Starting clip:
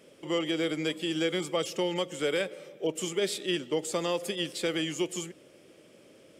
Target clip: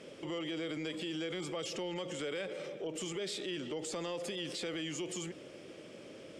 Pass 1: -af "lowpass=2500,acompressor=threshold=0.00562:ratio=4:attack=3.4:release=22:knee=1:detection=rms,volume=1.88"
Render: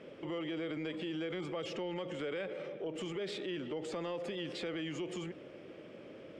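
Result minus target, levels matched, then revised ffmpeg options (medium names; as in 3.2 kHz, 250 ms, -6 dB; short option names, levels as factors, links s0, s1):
8 kHz band -12.0 dB
-af "lowpass=6800,acompressor=threshold=0.00562:ratio=4:attack=3.4:release=22:knee=1:detection=rms,volume=1.88"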